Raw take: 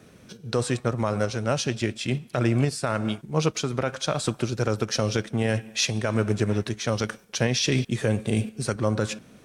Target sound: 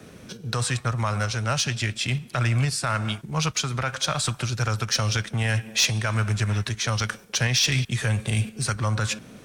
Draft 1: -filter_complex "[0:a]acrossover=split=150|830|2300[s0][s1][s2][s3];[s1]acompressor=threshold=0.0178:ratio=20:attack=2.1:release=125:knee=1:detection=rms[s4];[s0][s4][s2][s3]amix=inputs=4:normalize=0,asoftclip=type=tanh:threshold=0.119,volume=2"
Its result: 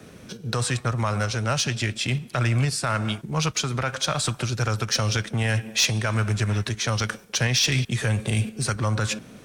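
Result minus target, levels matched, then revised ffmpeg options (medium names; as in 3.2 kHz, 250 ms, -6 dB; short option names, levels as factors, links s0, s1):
compression: peak gain reduction -6 dB
-filter_complex "[0:a]acrossover=split=150|830|2300[s0][s1][s2][s3];[s1]acompressor=threshold=0.00841:ratio=20:attack=2.1:release=125:knee=1:detection=rms[s4];[s0][s4][s2][s3]amix=inputs=4:normalize=0,asoftclip=type=tanh:threshold=0.119,volume=2"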